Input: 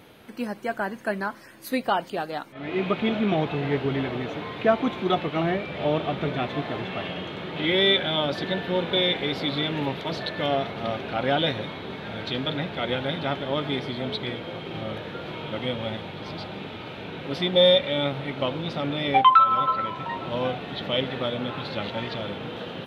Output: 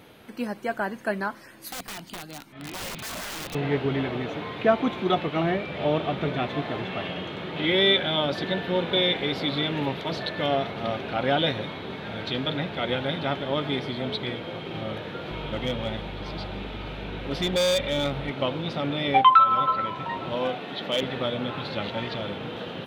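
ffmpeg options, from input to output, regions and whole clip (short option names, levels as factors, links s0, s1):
-filter_complex "[0:a]asettb=1/sr,asplit=3[s0][s1][s2];[s0]atrim=end=1.684[s3];[s1]atrim=start=1.68:end=3.55,asetpts=PTS-STARTPTS,afade=t=in:d=0.004:c=qsin,afade=t=out:st=1.866:d=0.004:c=qsin,equalizer=f=510:w=3:g=-9.5,acrossover=split=290|3000[s4][s5][s6];[s5]acompressor=threshold=0.00398:ratio=2:attack=3.2:release=140:knee=2.83:detection=peak[s7];[s4][s7][s6]amix=inputs=3:normalize=0,aeval=exprs='(mod(31.6*val(0)+1,2)-1)/31.6':c=same[s8];[s2]atrim=start=3.546[s9];[s3][s8]acrossfade=d=0.004:c1=hsin:c2=qsin[s10];[s10][s9]acrossfade=d=0.004:c1=qsin:c2=hsin,asettb=1/sr,asplit=3[s11][s12][s13];[s11]atrim=end=15.314[s14];[s12]atrim=start=15.31:end=18.3,asetpts=PTS-STARTPTS,afade=t=in:d=0.004:c=qsin,afade=t=out:st=2.986:d=0.004:c=qsin,aeval=exprs='val(0)+0.0141*(sin(2*PI*50*n/s)+sin(2*PI*2*50*n/s)/2+sin(2*PI*3*50*n/s)/3+sin(2*PI*4*50*n/s)/4+sin(2*PI*5*50*n/s)/5)':c=same,asoftclip=type=hard:threshold=0.1[s15];[s13]atrim=start=18.296[s16];[s14][s15]acrossfade=d=0.004:c1=hsin:c2=qsin[s17];[s17][s16]acrossfade=d=0.004:c1=qsin:c2=hsin,asettb=1/sr,asplit=3[s18][s19][s20];[s18]atrim=end=20.344[s21];[s19]atrim=start=20.34:end=21.03,asetpts=PTS-STARTPTS,afade=t=in:d=0.004:c=qsin,afade=t=out:st=0.686:d=0.004:c=qsin,highpass=200,asoftclip=type=hard:threshold=0.126[s22];[s20]atrim=start=21.026[s23];[s21][s22]acrossfade=d=0.004:c1=hsin:c2=qsin[s24];[s24][s23]acrossfade=d=0.004:c1=qsin:c2=hsin"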